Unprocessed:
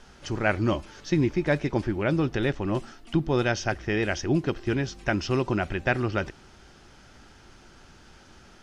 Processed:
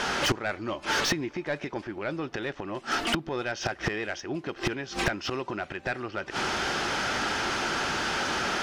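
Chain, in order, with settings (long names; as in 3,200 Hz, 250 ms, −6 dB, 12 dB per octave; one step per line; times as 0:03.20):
gate with flip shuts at −21 dBFS, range −31 dB
mid-hump overdrive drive 34 dB, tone 3,100 Hz, clips at −18 dBFS
level +3 dB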